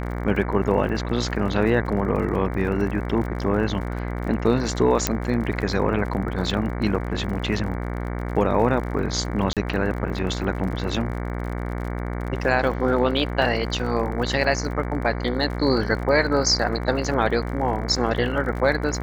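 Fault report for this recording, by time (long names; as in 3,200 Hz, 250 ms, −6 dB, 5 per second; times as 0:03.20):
mains buzz 60 Hz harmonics 38 −28 dBFS
surface crackle 46 per second −32 dBFS
0:01.86: drop-out 3.2 ms
0:05.07: click −3 dBFS
0:09.53–0:09.57: drop-out 37 ms
0:13.42: drop-out 2.2 ms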